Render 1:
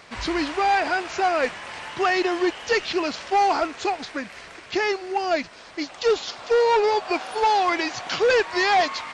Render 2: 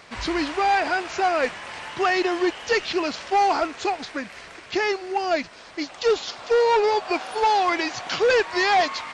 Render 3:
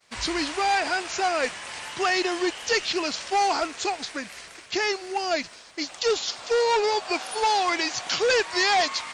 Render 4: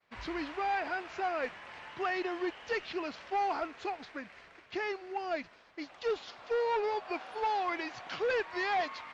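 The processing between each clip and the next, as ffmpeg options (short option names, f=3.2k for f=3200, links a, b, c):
-af anull
-af "agate=range=-33dB:threshold=-39dB:ratio=3:detection=peak,aemphasis=mode=production:type=75fm,volume=-3dB"
-af "lowpass=2.3k,volume=-8.5dB"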